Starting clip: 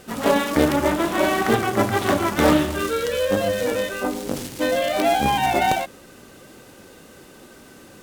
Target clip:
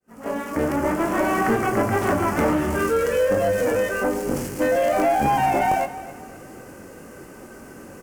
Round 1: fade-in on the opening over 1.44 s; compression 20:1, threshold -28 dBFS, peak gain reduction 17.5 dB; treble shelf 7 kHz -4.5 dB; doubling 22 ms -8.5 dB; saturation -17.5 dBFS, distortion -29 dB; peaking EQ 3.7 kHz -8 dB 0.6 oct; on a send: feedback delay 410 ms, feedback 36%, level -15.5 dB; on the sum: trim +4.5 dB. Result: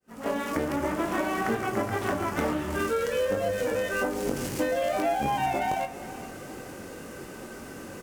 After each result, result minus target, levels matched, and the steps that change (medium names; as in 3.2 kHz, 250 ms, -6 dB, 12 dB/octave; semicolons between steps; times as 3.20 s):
echo 148 ms late; compression: peak gain reduction +10 dB; 4 kHz band +6.0 dB
change: feedback delay 262 ms, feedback 36%, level -15.5 dB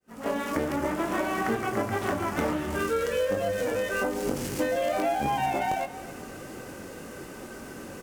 compression: peak gain reduction +10 dB; 4 kHz band +5.5 dB
change: compression 20:1, threshold -17.5 dBFS, peak gain reduction 7.5 dB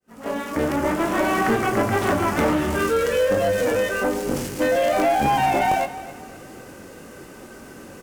4 kHz band +5.5 dB
change: peaking EQ 3.7 kHz -18.5 dB 0.6 oct